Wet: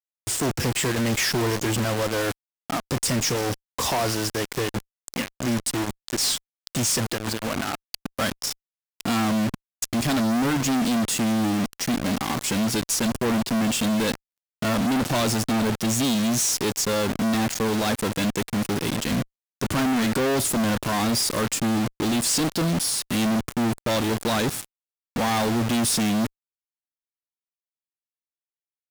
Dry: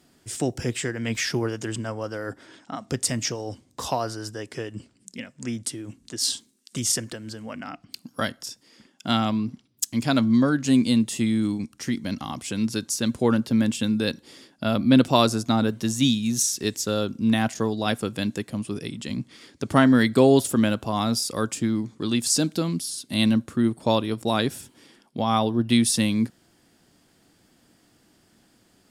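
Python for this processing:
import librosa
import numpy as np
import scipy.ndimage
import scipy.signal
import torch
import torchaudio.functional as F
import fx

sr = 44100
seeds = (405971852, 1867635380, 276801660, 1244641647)

y = fx.quant_companded(x, sr, bits=4)
y = fx.fuzz(y, sr, gain_db=38.0, gate_db=-37.0)
y = y * librosa.db_to_amplitude(-7.5)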